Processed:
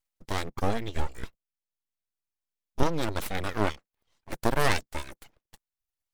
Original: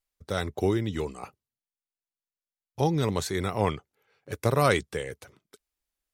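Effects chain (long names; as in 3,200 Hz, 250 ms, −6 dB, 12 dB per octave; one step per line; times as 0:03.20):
reverb reduction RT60 0.7 s
full-wave rectification
0:00.96–0:02.83: low-shelf EQ 180 Hz +9.5 dB
level +1 dB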